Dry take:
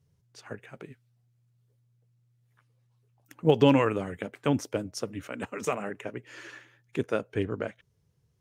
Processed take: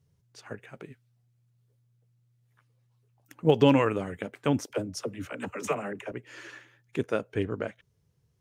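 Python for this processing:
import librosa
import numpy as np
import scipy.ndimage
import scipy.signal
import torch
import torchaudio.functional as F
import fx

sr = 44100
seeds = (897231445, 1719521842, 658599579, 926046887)

y = fx.dispersion(x, sr, late='lows', ms=43.0, hz=450.0, at=(4.66, 6.12))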